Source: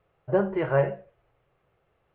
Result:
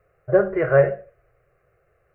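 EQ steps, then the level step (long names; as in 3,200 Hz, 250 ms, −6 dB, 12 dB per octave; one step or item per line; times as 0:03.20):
phaser with its sweep stopped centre 910 Hz, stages 6
+8.0 dB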